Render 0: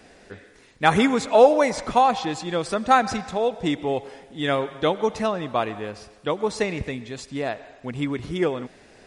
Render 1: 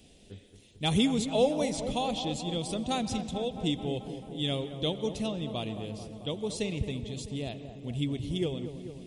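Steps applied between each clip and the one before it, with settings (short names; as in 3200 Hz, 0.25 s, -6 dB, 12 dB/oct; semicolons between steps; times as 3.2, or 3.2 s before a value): EQ curve 130 Hz 0 dB, 630 Hz -13 dB, 1600 Hz -26 dB, 3200 Hz +1 dB, 4700 Hz -7 dB, 11000 Hz +1 dB; dark delay 0.219 s, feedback 72%, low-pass 1600 Hz, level -10 dB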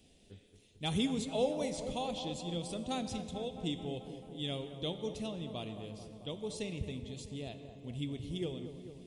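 resonator 86 Hz, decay 1.1 s, harmonics all, mix 60%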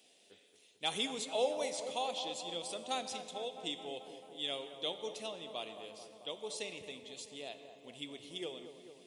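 HPF 560 Hz 12 dB/oct; gain +3 dB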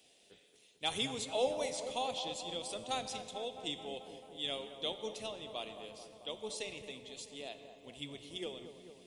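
octaver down 1 oct, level -6 dB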